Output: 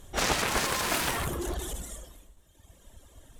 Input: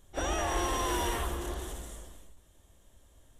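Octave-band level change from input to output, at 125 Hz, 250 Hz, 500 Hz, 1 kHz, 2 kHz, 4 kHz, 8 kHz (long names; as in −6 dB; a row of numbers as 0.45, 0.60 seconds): +1.5, +1.5, +1.0, +1.5, +7.5, +7.0, +5.5 decibels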